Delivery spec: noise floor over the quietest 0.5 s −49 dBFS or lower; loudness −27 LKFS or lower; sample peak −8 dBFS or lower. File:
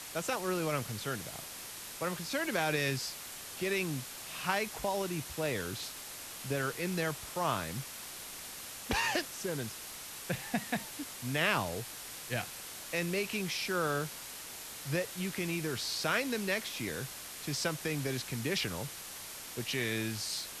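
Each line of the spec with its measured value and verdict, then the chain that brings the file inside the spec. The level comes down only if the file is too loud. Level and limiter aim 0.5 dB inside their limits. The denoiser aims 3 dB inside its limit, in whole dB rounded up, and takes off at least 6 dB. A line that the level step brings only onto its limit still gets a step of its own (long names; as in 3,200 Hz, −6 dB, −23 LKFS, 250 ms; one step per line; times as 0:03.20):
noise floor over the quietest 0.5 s −45 dBFS: out of spec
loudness −35.0 LKFS: in spec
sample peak −14.5 dBFS: in spec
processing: broadband denoise 7 dB, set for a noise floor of −45 dBFS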